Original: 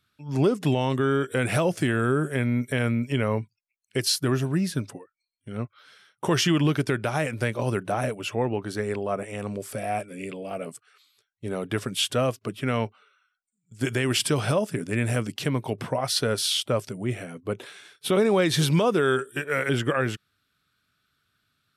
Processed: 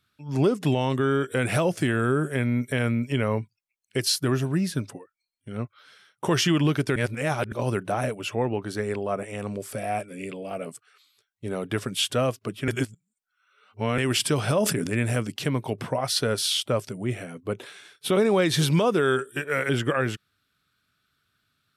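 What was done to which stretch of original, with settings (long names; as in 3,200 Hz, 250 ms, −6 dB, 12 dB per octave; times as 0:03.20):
0:06.96–0:07.52: reverse
0:12.68–0:13.98: reverse
0:14.50–0:15.03: level that may fall only so fast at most 40 dB per second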